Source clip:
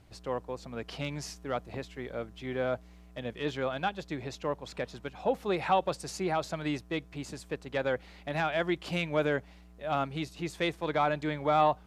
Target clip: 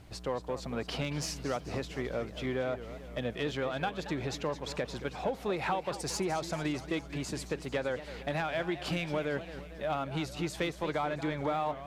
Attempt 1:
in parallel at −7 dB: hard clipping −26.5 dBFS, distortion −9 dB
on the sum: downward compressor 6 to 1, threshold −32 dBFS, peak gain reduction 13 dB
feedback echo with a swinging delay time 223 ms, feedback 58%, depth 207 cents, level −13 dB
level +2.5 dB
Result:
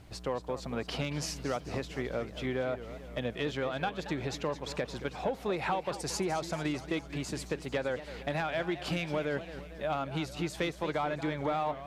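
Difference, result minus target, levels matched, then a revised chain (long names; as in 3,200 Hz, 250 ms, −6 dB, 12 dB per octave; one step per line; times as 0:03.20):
hard clipping: distortion −7 dB
in parallel at −7 dB: hard clipping −37.5 dBFS, distortion −2 dB
on the sum: downward compressor 6 to 1, threshold −32 dBFS, peak gain reduction 12 dB
feedback echo with a swinging delay time 223 ms, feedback 58%, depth 207 cents, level −13 dB
level +2.5 dB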